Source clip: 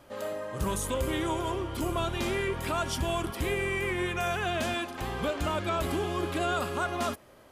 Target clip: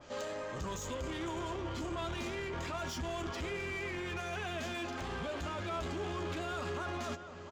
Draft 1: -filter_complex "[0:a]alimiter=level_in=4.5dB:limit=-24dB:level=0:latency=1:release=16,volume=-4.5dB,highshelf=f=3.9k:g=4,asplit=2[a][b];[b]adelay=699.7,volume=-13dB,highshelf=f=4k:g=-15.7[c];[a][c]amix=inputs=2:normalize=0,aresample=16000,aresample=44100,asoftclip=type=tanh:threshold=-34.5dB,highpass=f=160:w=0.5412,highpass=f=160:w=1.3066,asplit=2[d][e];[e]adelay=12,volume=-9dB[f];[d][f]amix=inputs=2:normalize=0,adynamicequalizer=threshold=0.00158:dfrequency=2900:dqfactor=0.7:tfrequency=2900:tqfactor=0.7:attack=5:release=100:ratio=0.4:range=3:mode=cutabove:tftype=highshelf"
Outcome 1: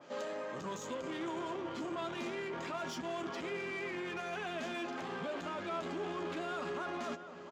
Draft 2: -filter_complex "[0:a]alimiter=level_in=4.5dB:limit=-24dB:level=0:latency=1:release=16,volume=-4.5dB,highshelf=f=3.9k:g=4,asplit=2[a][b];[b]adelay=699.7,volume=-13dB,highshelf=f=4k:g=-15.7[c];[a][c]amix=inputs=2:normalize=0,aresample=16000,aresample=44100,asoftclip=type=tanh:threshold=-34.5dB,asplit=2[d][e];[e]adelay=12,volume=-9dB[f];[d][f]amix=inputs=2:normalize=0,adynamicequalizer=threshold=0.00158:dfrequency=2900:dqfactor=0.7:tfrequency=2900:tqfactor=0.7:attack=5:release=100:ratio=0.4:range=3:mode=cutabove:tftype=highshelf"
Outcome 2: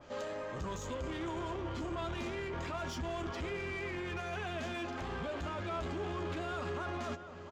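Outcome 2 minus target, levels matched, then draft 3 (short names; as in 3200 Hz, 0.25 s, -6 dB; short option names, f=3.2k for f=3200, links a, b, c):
8000 Hz band -4.5 dB
-filter_complex "[0:a]alimiter=level_in=4.5dB:limit=-24dB:level=0:latency=1:release=16,volume=-4.5dB,highshelf=f=3.9k:g=12.5,asplit=2[a][b];[b]adelay=699.7,volume=-13dB,highshelf=f=4k:g=-15.7[c];[a][c]amix=inputs=2:normalize=0,aresample=16000,aresample=44100,asoftclip=type=tanh:threshold=-34.5dB,asplit=2[d][e];[e]adelay=12,volume=-9dB[f];[d][f]amix=inputs=2:normalize=0,adynamicequalizer=threshold=0.00158:dfrequency=2900:dqfactor=0.7:tfrequency=2900:tqfactor=0.7:attack=5:release=100:ratio=0.4:range=3:mode=cutabove:tftype=highshelf"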